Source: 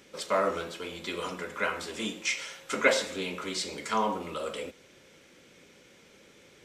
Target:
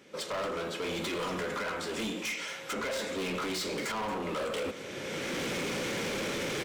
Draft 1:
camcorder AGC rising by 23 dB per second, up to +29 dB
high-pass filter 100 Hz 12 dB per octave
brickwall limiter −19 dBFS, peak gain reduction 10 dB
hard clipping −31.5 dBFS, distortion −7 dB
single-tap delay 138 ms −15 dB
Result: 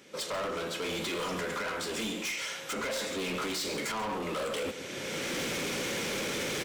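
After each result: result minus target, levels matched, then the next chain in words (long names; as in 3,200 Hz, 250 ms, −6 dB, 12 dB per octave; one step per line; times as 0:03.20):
echo 89 ms early; 8,000 Hz band +3.0 dB
camcorder AGC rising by 23 dB per second, up to +29 dB
high-pass filter 100 Hz 12 dB per octave
brickwall limiter −19 dBFS, peak gain reduction 10 dB
hard clipping −31.5 dBFS, distortion −7 dB
single-tap delay 227 ms −15 dB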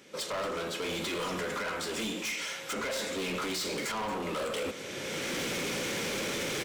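8,000 Hz band +3.0 dB
camcorder AGC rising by 23 dB per second, up to +29 dB
high-pass filter 100 Hz 12 dB per octave
high-shelf EQ 3,300 Hz −6.5 dB
brickwall limiter −19 dBFS, peak gain reduction 9 dB
hard clipping −31.5 dBFS, distortion −7 dB
single-tap delay 227 ms −15 dB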